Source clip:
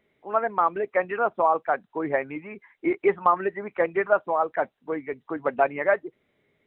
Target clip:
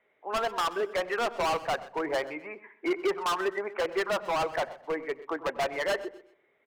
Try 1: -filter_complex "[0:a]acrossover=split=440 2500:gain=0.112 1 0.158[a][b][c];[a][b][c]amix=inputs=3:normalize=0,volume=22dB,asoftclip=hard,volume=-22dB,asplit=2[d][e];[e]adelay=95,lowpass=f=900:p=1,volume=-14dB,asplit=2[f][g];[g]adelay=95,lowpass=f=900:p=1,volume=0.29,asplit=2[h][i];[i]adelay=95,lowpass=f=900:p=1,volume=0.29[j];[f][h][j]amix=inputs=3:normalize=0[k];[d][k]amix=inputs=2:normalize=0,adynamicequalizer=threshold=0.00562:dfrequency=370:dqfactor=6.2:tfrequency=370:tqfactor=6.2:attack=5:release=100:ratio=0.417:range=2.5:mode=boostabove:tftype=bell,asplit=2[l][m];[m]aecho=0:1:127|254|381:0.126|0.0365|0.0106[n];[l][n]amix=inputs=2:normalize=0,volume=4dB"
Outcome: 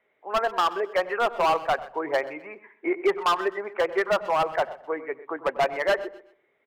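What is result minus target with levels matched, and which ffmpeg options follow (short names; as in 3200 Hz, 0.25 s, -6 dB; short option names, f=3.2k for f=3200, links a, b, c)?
overloaded stage: distortion -5 dB
-filter_complex "[0:a]acrossover=split=440 2500:gain=0.112 1 0.158[a][b][c];[a][b][c]amix=inputs=3:normalize=0,volume=29.5dB,asoftclip=hard,volume=-29.5dB,asplit=2[d][e];[e]adelay=95,lowpass=f=900:p=1,volume=-14dB,asplit=2[f][g];[g]adelay=95,lowpass=f=900:p=1,volume=0.29,asplit=2[h][i];[i]adelay=95,lowpass=f=900:p=1,volume=0.29[j];[f][h][j]amix=inputs=3:normalize=0[k];[d][k]amix=inputs=2:normalize=0,adynamicequalizer=threshold=0.00562:dfrequency=370:dqfactor=6.2:tfrequency=370:tqfactor=6.2:attack=5:release=100:ratio=0.417:range=2.5:mode=boostabove:tftype=bell,asplit=2[l][m];[m]aecho=0:1:127|254|381:0.126|0.0365|0.0106[n];[l][n]amix=inputs=2:normalize=0,volume=4dB"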